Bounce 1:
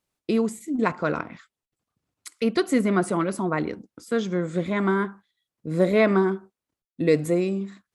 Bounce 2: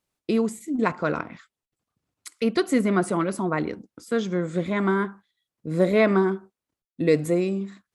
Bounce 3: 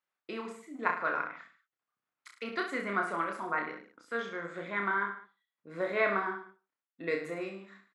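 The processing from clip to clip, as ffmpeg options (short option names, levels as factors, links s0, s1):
-af anull
-af "bandpass=f=1500:t=q:w=1.4:csg=0,aecho=1:1:30|64.5|104.2|149.8|202.3:0.631|0.398|0.251|0.158|0.1,volume=0.794"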